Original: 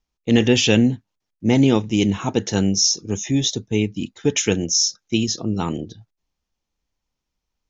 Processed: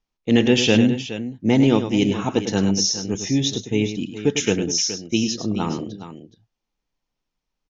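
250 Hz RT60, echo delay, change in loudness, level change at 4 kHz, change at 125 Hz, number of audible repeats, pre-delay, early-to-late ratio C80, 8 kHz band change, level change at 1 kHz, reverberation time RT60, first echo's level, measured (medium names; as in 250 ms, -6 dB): no reverb, 102 ms, -1.0 dB, -1.5 dB, -2.0 dB, 2, no reverb, no reverb, no reading, +0.5 dB, no reverb, -9.5 dB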